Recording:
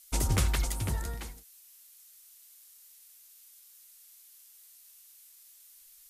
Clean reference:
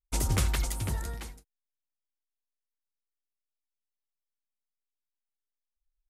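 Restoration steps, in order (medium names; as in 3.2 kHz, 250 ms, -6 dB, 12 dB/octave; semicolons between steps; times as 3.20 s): noise print and reduce 30 dB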